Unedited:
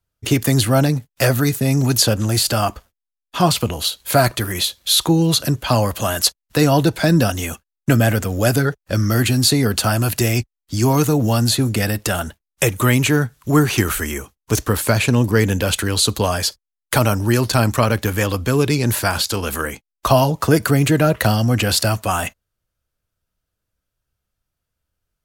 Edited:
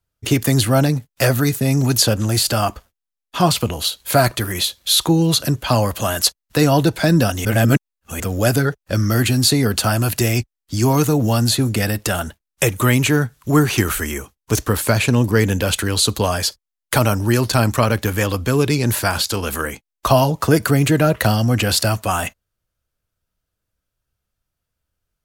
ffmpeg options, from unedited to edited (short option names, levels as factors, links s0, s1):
-filter_complex "[0:a]asplit=3[s0][s1][s2];[s0]atrim=end=7.452[s3];[s1]atrim=start=7.448:end=8.202,asetpts=PTS-STARTPTS,areverse[s4];[s2]atrim=start=8.198[s5];[s3][s4]acrossfade=d=0.004:c1=hsin:c2=hsin[s6];[s6][s5]acrossfade=d=0.004:c1=hsin:c2=hsin"